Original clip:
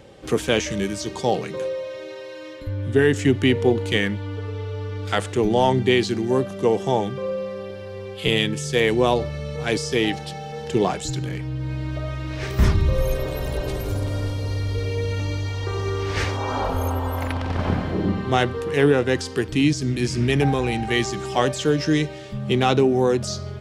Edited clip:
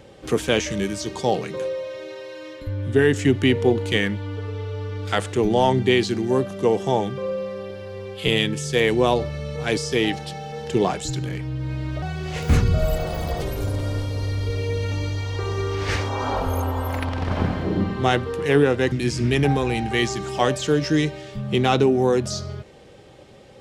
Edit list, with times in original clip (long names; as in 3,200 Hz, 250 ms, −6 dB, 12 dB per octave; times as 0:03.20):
0:12.02–0:13.70: play speed 120%
0:19.20–0:19.89: remove